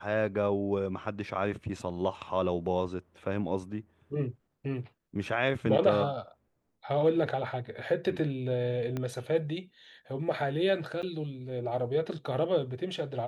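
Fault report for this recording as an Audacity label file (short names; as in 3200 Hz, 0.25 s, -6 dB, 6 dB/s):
8.970000	8.970000	pop -21 dBFS
11.020000	11.030000	gap 8.2 ms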